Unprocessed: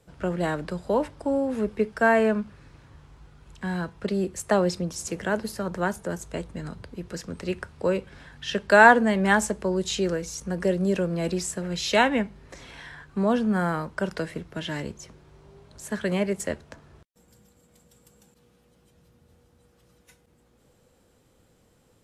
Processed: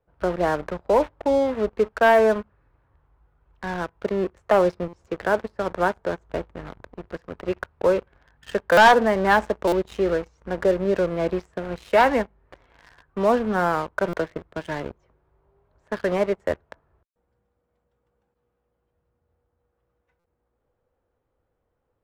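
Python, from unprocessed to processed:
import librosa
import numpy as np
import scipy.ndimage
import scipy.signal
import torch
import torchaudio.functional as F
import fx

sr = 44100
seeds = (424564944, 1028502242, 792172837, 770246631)

y = scipy.signal.sosfilt(scipy.signal.butter(2, 1300.0, 'lowpass', fs=sr, output='sos'), x)
y = fx.peak_eq(y, sr, hz=190.0, db=-12.5, octaves=1.7)
y = fx.leveller(y, sr, passes=3)
y = fx.buffer_glitch(y, sr, at_s=(4.88, 8.72, 9.67, 14.08, 20.19), block=256, repeats=8)
y = y * librosa.db_to_amplitude(-2.0)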